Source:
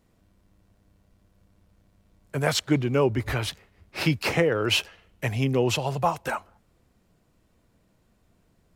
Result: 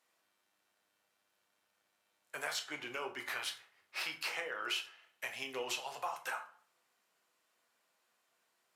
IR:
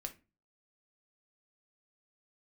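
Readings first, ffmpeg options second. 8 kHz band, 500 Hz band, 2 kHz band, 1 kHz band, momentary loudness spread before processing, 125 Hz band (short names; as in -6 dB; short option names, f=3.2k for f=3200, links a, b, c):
-10.0 dB, -20.0 dB, -9.0 dB, -12.5 dB, 11 LU, -39.5 dB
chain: -filter_complex "[0:a]highpass=990,acompressor=threshold=-34dB:ratio=4[a];[1:a]atrim=start_sample=2205,asetrate=28665,aresample=44100[b];[a][b]afir=irnorm=-1:irlink=0,volume=-2dB"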